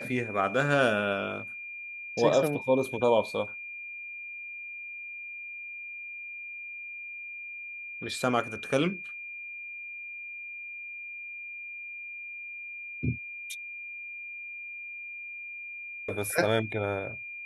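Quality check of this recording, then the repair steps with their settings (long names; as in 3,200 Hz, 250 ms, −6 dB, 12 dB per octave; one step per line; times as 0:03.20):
whistle 2,400 Hz −38 dBFS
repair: notch filter 2,400 Hz, Q 30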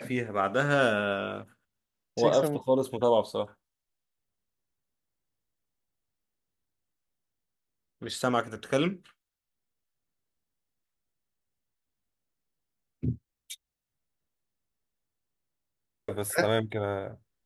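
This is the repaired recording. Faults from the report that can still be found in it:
none of them is left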